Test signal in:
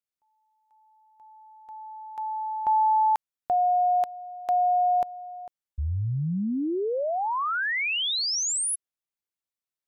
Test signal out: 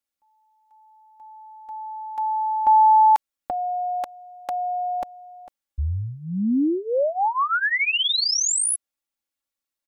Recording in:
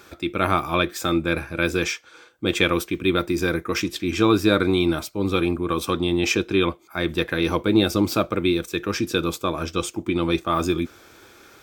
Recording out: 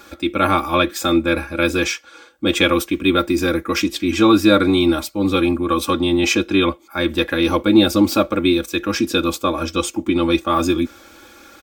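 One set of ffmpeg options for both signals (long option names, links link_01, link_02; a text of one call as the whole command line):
ffmpeg -i in.wav -af "aecho=1:1:3.6:0.84,volume=2.5dB" out.wav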